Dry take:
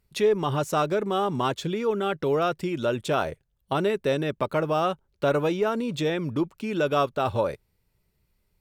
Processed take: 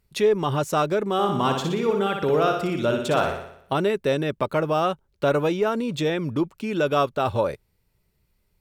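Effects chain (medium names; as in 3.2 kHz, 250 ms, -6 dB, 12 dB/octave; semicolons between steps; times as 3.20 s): 1.13–3.72 s: flutter echo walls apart 10.3 m, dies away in 0.69 s; trim +2 dB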